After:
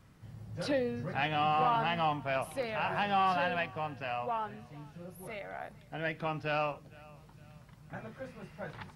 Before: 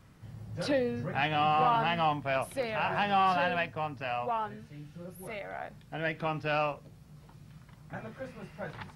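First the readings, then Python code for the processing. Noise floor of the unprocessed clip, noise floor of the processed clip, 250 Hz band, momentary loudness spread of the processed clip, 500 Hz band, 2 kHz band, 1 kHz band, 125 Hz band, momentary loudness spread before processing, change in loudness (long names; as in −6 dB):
−56 dBFS, −57 dBFS, −2.5 dB, 19 LU, −2.5 dB, −2.5 dB, −2.5 dB, −2.5 dB, 19 LU, −2.5 dB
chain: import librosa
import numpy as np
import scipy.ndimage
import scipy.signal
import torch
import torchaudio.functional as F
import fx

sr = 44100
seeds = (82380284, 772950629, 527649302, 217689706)

y = fx.echo_feedback(x, sr, ms=456, feedback_pct=41, wet_db=-23.0)
y = y * 10.0 ** (-2.5 / 20.0)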